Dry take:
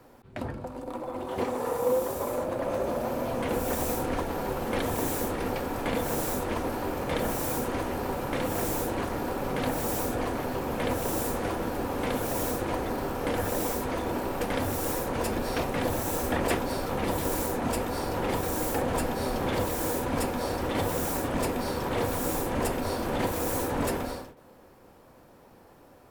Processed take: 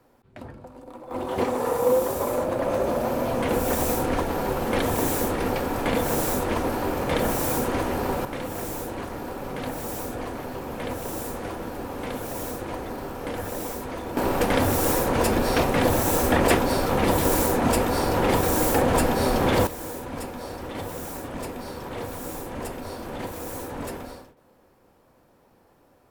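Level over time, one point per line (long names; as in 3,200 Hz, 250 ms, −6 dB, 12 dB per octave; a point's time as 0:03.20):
−6 dB
from 0:01.11 +5 dB
from 0:08.25 −2.5 dB
from 0:14.17 +7.5 dB
from 0:19.67 −5 dB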